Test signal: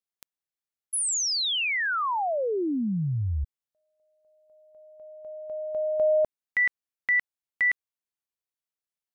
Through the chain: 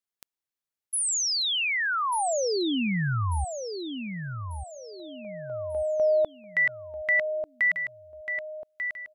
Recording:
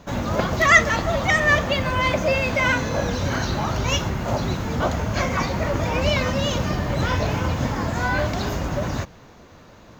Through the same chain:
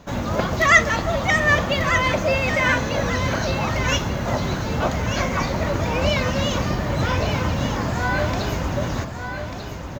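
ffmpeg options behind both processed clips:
-af "aecho=1:1:1192|2384|3576|4768:0.398|0.147|0.0545|0.0202"

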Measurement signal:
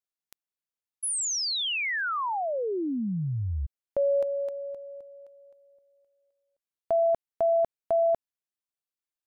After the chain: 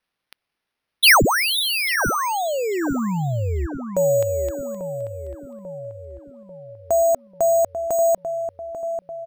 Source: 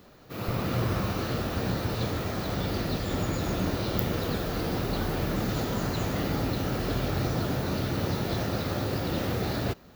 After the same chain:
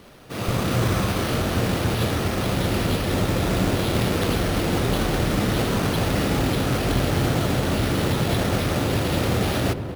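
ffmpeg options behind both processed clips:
-filter_complex "[0:a]equalizer=f=9.5k:w=1.4:g=13,acrusher=samples=6:mix=1:aa=0.000001,asplit=2[a][b];[b]adelay=842,lowpass=f=1.1k:p=1,volume=-7.5dB,asplit=2[c][d];[d]adelay=842,lowpass=f=1.1k:p=1,volume=0.55,asplit=2[e][f];[f]adelay=842,lowpass=f=1.1k:p=1,volume=0.55,asplit=2[g][h];[h]adelay=842,lowpass=f=1.1k:p=1,volume=0.55,asplit=2[i][j];[j]adelay=842,lowpass=f=1.1k:p=1,volume=0.55,asplit=2[k][l];[l]adelay=842,lowpass=f=1.1k:p=1,volume=0.55,asplit=2[m][n];[n]adelay=842,lowpass=f=1.1k:p=1,volume=0.55[o];[c][e][g][i][k][m][o]amix=inputs=7:normalize=0[p];[a][p]amix=inputs=2:normalize=0,volume=6dB"

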